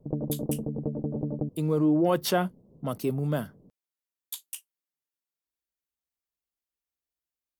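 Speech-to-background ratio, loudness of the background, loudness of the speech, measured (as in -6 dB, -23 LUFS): 4.5 dB, -32.5 LUFS, -28.0 LUFS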